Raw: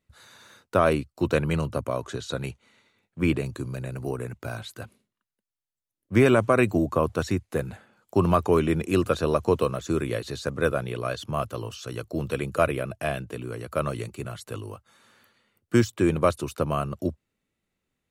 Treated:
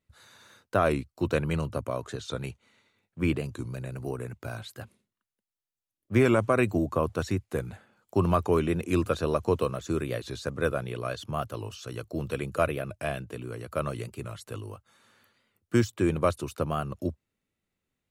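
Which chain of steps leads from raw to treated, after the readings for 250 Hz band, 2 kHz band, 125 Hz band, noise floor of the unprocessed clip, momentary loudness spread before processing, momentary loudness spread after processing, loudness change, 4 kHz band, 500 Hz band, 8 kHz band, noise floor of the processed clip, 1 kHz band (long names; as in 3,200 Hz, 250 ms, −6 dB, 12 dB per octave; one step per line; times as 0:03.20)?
−3.5 dB, −3.5 dB, −2.5 dB, below −85 dBFS, 14 LU, 14 LU, −3.5 dB, −3.5 dB, −3.5 dB, −3.5 dB, below −85 dBFS, −3.5 dB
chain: parametric band 94 Hz +3 dB 0.45 octaves
wow of a warped record 45 rpm, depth 100 cents
level −3.5 dB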